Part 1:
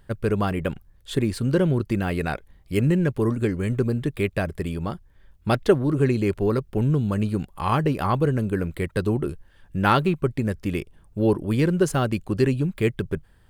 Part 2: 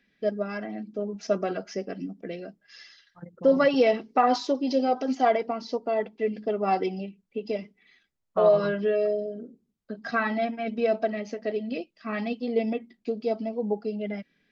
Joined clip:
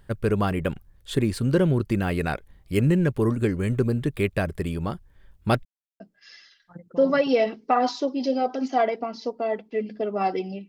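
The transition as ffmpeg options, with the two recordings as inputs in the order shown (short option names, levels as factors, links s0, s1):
-filter_complex "[0:a]apad=whole_dur=10.68,atrim=end=10.68,asplit=2[s0][s1];[s0]atrim=end=5.65,asetpts=PTS-STARTPTS,afade=t=out:st=5.646:d=0.004:c=hsin[s2];[s1]atrim=start=5.65:end=6,asetpts=PTS-STARTPTS,volume=0[s3];[1:a]atrim=start=2.47:end=7.15,asetpts=PTS-STARTPTS,afade=t=in:d=0.004:c=hsin[s4];[s2][s3][s4]concat=n=3:v=0:a=1"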